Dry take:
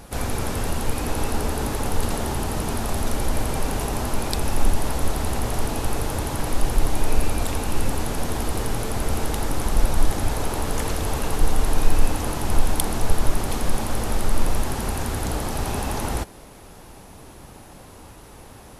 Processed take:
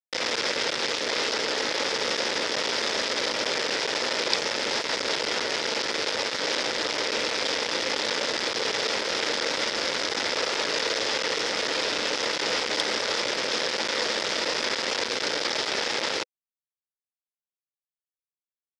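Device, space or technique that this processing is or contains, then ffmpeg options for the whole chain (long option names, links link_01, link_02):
hand-held game console: -af "acrusher=bits=3:mix=0:aa=0.000001,highpass=460,equalizer=frequency=500:width_type=q:width=4:gain=6,equalizer=frequency=750:width_type=q:width=4:gain=-8,equalizer=frequency=1100:width_type=q:width=4:gain=-5,equalizer=frequency=2000:width_type=q:width=4:gain=4,equalizer=frequency=3500:width_type=q:width=4:gain=4,equalizer=frequency=5100:width_type=q:width=4:gain=8,lowpass=frequency=5800:width=0.5412,lowpass=frequency=5800:width=1.3066"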